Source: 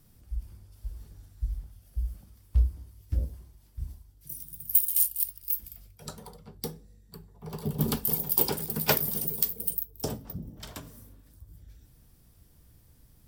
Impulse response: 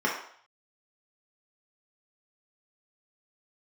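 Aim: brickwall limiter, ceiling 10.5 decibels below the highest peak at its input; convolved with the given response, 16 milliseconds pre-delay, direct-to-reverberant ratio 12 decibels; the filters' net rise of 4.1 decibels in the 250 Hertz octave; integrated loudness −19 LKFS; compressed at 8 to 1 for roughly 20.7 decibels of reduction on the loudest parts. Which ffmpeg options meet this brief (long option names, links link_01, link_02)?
-filter_complex "[0:a]equalizer=frequency=250:width_type=o:gain=5.5,acompressor=threshold=-40dB:ratio=8,alimiter=level_in=7.5dB:limit=-24dB:level=0:latency=1,volume=-7.5dB,asplit=2[link_01][link_02];[1:a]atrim=start_sample=2205,adelay=16[link_03];[link_02][link_03]afir=irnorm=-1:irlink=0,volume=-24.5dB[link_04];[link_01][link_04]amix=inputs=2:normalize=0,volume=28dB"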